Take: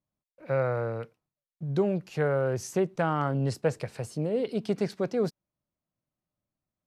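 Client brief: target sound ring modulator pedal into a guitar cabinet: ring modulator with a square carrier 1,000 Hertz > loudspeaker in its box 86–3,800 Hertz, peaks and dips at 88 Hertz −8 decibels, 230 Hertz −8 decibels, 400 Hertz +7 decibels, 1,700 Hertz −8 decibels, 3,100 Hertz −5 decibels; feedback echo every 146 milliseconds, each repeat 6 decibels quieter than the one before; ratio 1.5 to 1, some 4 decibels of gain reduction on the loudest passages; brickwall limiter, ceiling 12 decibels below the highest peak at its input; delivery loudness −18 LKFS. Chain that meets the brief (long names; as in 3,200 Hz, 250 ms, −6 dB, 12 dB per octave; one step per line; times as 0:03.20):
downward compressor 1.5 to 1, threshold −32 dBFS
brickwall limiter −29.5 dBFS
repeating echo 146 ms, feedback 50%, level −6 dB
ring modulator with a square carrier 1,000 Hz
loudspeaker in its box 86–3,800 Hz, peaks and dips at 88 Hz −8 dB, 230 Hz −8 dB, 400 Hz +7 dB, 1,700 Hz −8 dB, 3,100 Hz −5 dB
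level +20.5 dB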